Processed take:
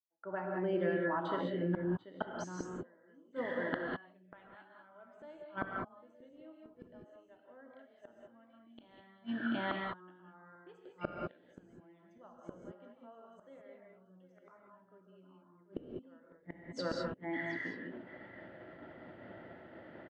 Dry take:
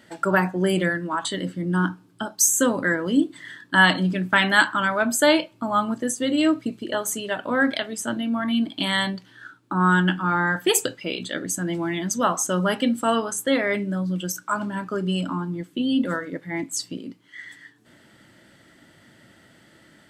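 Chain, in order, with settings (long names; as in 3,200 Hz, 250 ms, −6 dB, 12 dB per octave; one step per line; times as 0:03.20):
fade in at the beginning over 5.79 s
drawn EQ curve 160 Hz 0 dB, 670 Hz +14 dB, 1,200 Hz +8 dB
noise gate −45 dBFS, range −25 dB
head-to-tape spacing loss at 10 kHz 42 dB
on a send: single-tap delay 736 ms −15 dB
on the sum: low-pass that shuts in the quiet parts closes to 2,900 Hz, open at −21.5 dBFS
gate with flip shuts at −21 dBFS, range −41 dB
reverb whose tail is shaped and stops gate 230 ms rising, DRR 0 dB
level −2 dB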